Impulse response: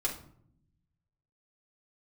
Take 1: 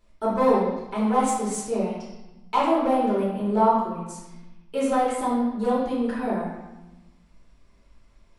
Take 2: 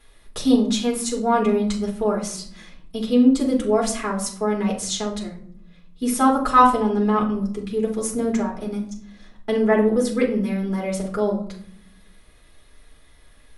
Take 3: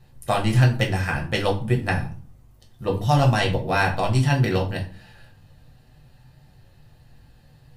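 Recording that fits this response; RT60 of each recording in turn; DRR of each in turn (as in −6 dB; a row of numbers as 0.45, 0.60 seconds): 2; 1.0, 0.65, 0.45 seconds; −8.5, −3.0, −1.0 decibels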